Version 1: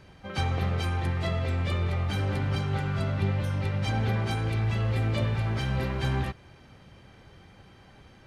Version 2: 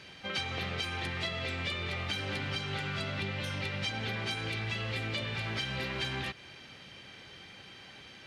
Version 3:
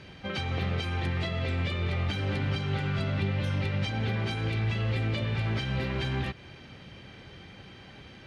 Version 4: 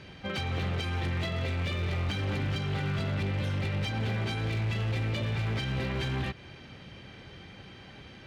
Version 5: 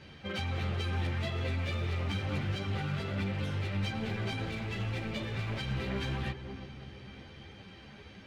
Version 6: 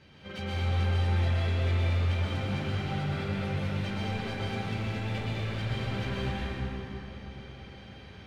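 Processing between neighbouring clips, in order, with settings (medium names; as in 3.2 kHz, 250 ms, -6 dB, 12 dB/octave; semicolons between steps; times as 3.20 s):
frequency weighting D; compression, threshold -32 dBFS, peak gain reduction 10.5 dB
tilt EQ -2.5 dB/octave; trim +2 dB
hard clipper -26.5 dBFS, distortion -14 dB
filtered feedback delay 329 ms, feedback 58%, low-pass 1.1 kHz, level -10 dB; three-phase chorus
plate-style reverb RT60 3 s, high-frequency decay 0.65×, pre-delay 105 ms, DRR -6.5 dB; trim -5 dB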